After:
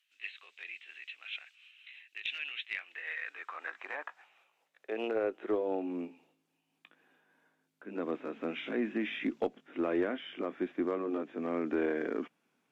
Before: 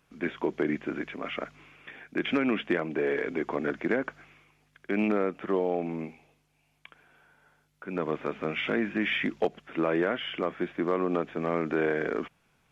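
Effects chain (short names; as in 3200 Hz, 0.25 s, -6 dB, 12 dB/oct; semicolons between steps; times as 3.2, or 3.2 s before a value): gliding pitch shift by +2.5 st ending unshifted; high-pass sweep 2600 Hz -> 260 Hz, 2.55–5.86; added harmonics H 2 -18 dB, 4 -30 dB, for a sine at -11.5 dBFS; gain -8 dB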